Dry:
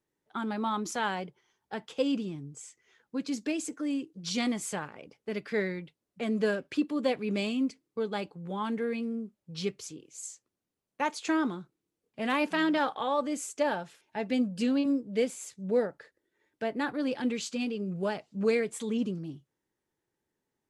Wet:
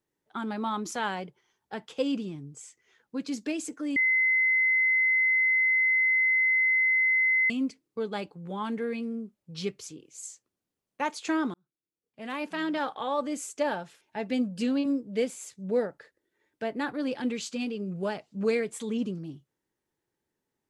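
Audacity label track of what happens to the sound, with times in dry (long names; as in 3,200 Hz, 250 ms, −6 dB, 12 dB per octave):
3.960000	7.500000	beep over 2,050 Hz −20.5 dBFS
11.540000	13.230000	fade in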